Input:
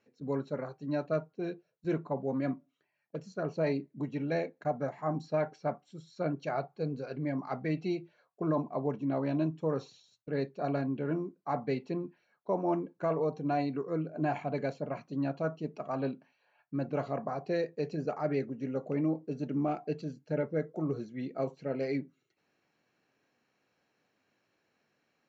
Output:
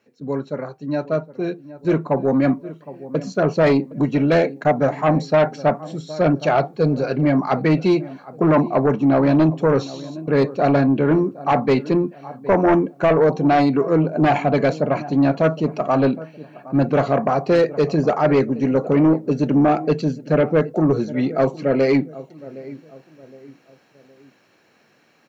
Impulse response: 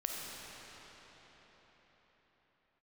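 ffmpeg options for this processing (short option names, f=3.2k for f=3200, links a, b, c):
-filter_complex "[0:a]highpass=93,asplit=2[a][b];[b]adelay=764,lowpass=f=1.3k:p=1,volume=-19dB,asplit=2[c][d];[d]adelay=764,lowpass=f=1.3k:p=1,volume=0.41,asplit=2[e][f];[f]adelay=764,lowpass=f=1.3k:p=1,volume=0.41[g];[c][e][g]amix=inputs=3:normalize=0[h];[a][h]amix=inputs=2:normalize=0,dynaudnorm=f=550:g=7:m=9dB,aeval=exprs='0.316*sin(PI/2*1.78*val(0)/0.316)':c=same"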